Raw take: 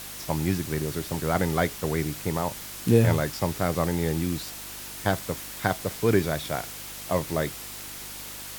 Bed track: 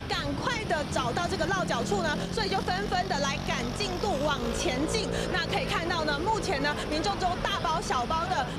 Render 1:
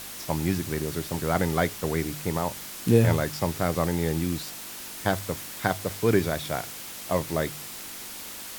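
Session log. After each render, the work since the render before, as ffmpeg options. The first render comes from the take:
-af "bandreject=f=50:t=h:w=4,bandreject=f=100:t=h:w=4,bandreject=f=150:t=h:w=4"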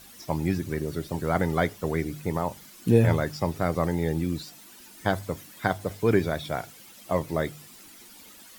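-af "afftdn=nr=13:nf=-39"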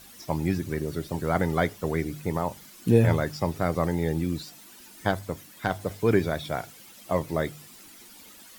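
-filter_complex "[0:a]asettb=1/sr,asplit=3[s0][s1][s2];[s0]atrim=end=5.114[s3];[s1]atrim=start=5.11:end=5.73,asetpts=PTS-STARTPTS,afade=t=in:d=0.004:c=qsin,afade=t=out:st=0.616:d=0.004:c=qsin,aeval=exprs='(tanh(5.01*val(0)+0.45)-tanh(0.45))/5.01':c=same[s4];[s2]atrim=start=5.726[s5];[s3][s4]acrossfade=d=0.004:c1=hsin:c2=qsin[s6];[s6][s5]acrossfade=d=0.004:c1=qsin:c2=hsin"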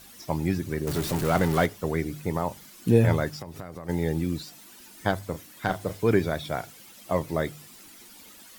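-filter_complex "[0:a]asettb=1/sr,asplit=3[s0][s1][s2];[s0]atrim=end=0.874[s3];[s1]atrim=start=0.87:end=1.66,asetpts=PTS-STARTPTS,afade=t=in:d=0.004:c=qsin,afade=t=out:st=0.786:d=0.004:c=qsin,aeval=exprs='val(0)+0.5*0.0422*sgn(val(0))':c=same[s4];[s2]atrim=start=1.656[s5];[s3][s4]acrossfade=d=0.004:c1=hsin:c2=qsin[s6];[s6][s5]acrossfade=d=0.004:c1=qsin:c2=hsin,asplit=3[s7][s8][s9];[s7]afade=t=out:st=3.29:d=0.02[s10];[s8]acompressor=threshold=0.0224:ratio=16:attack=3.2:release=140:knee=1:detection=peak,afade=t=in:st=3.29:d=0.02,afade=t=out:st=3.88:d=0.02[s11];[s9]afade=t=in:st=3.88:d=0.02[s12];[s10][s11][s12]amix=inputs=3:normalize=0,asettb=1/sr,asplit=3[s13][s14][s15];[s13]atrim=end=5.304[s16];[s14]atrim=start=5.3:end=6.01,asetpts=PTS-STARTPTS,afade=t=in:d=0.004:c=qsin,afade=t=out:st=0.706:d=0.004:c=qsin,asplit=2[s17][s18];[s18]adelay=37,volume=0.335[s19];[s17][s19]amix=inputs=2:normalize=0,atrim=end_sample=31311[s20];[s15]atrim=start=6.006[s21];[s16][s20]acrossfade=d=0.004:c1=hsin:c2=qsin[s22];[s22][s21]acrossfade=d=0.004:c1=qsin:c2=hsin"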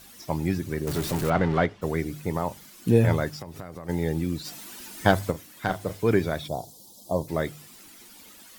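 -filter_complex "[0:a]asplit=3[s0][s1][s2];[s0]afade=t=out:st=1.29:d=0.02[s3];[s1]lowpass=3200,afade=t=in:st=1.29:d=0.02,afade=t=out:st=1.81:d=0.02[s4];[s2]afade=t=in:st=1.81:d=0.02[s5];[s3][s4][s5]amix=inputs=3:normalize=0,asplit=3[s6][s7][s8];[s6]afade=t=out:st=4.44:d=0.02[s9];[s7]acontrast=82,afade=t=in:st=4.44:d=0.02,afade=t=out:st=5.3:d=0.02[s10];[s8]afade=t=in:st=5.3:d=0.02[s11];[s9][s10][s11]amix=inputs=3:normalize=0,asplit=3[s12][s13][s14];[s12]afade=t=out:st=6.47:d=0.02[s15];[s13]asuperstop=centerf=1900:order=8:qfactor=0.68,afade=t=in:st=6.47:d=0.02,afade=t=out:st=7.27:d=0.02[s16];[s14]afade=t=in:st=7.27:d=0.02[s17];[s15][s16][s17]amix=inputs=3:normalize=0"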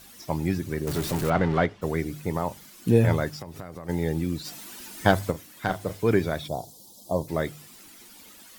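-af anull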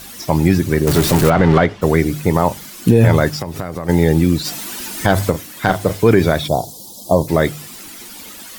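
-af "alimiter=level_in=5.01:limit=0.891:release=50:level=0:latency=1"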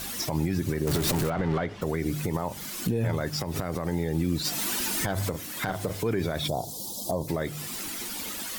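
-af "acompressor=threshold=0.0501:ratio=1.5,alimiter=limit=0.133:level=0:latency=1:release=133"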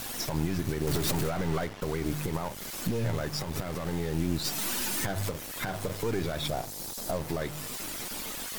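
-filter_complex "[0:a]aeval=exprs='if(lt(val(0),0),0.447*val(0),val(0))':c=same,acrossover=split=660[s0][s1];[s0]acrusher=bits=6:mix=0:aa=0.000001[s2];[s2][s1]amix=inputs=2:normalize=0"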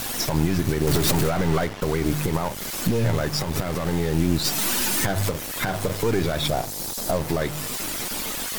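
-af "volume=2.51"

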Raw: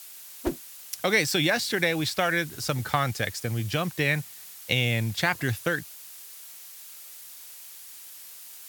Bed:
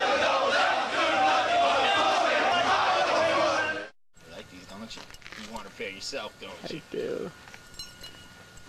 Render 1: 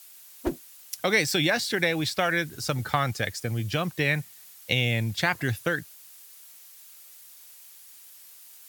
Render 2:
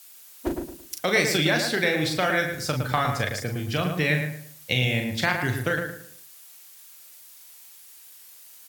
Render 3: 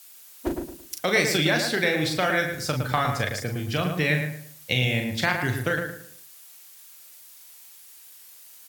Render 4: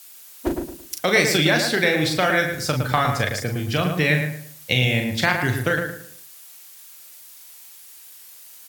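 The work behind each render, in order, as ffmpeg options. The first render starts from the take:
-af "afftdn=nr=6:nf=-45"
-filter_complex "[0:a]asplit=2[s0][s1];[s1]adelay=39,volume=0.501[s2];[s0][s2]amix=inputs=2:normalize=0,asplit=2[s3][s4];[s4]adelay=111,lowpass=f=2000:p=1,volume=0.562,asplit=2[s5][s6];[s6]adelay=111,lowpass=f=2000:p=1,volume=0.33,asplit=2[s7][s8];[s8]adelay=111,lowpass=f=2000:p=1,volume=0.33,asplit=2[s9][s10];[s10]adelay=111,lowpass=f=2000:p=1,volume=0.33[s11];[s5][s7][s9][s11]amix=inputs=4:normalize=0[s12];[s3][s12]amix=inputs=2:normalize=0"
-af anull
-af "volume=1.58"

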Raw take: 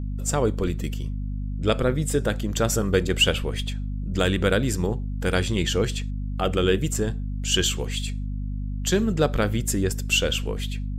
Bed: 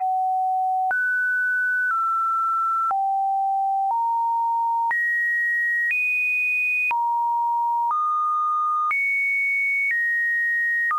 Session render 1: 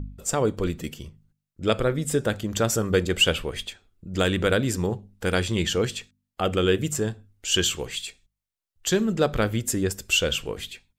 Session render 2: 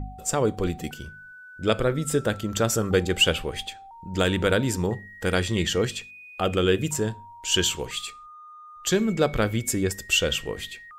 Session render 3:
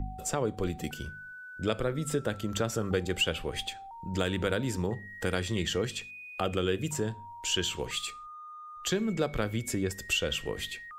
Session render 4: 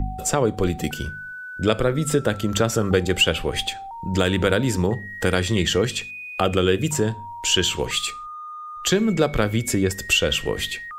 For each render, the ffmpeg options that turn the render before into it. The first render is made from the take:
-af "bandreject=f=50:t=h:w=4,bandreject=f=100:t=h:w=4,bandreject=f=150:t=h:w=4,bandreject=f=200:t=h:w=4,bandreject=f=250:t=h:w=4"
-filter_complex "[1:a]volume=0.0668[s0];[0:a][s0]amix=inputs=2:normalize=0"
-filter_complex "[0:a]acrossover=split=170|4700[s0][s1][s2];[s2]alimiter=limit=0.0631:level=0:latency=1:release=365[s3];[s0][s1][s3]amix=inputs=3:normalize=0,acompressor=threshold=0.0282:ratio=2"
-af "volume=3.16,alimiter=limit=0.708:level=0:latency=1"

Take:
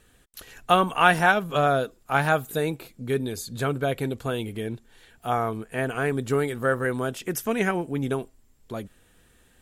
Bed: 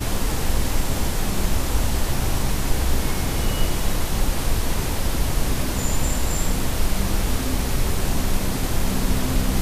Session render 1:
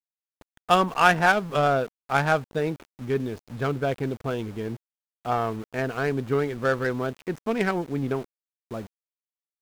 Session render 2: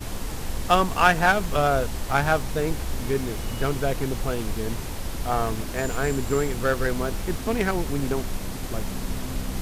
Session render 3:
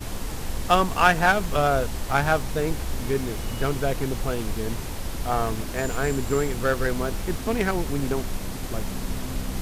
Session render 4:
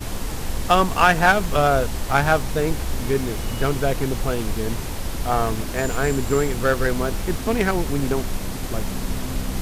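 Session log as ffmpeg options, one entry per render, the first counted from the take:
-af "adynamicsmooth=sensitivity=2.5:basefreq=1200,aeval=exprs='val(0)*gte(abs(val(0)),0.00891)':c=same"
-filter_complex "[1:a]volume=0.376[s0];[0:a][s0]amix=inputs=2:normalize=0"
-af anull
-af "volume=1.5,alimiter=limit=0.708:level=0:latency=1"

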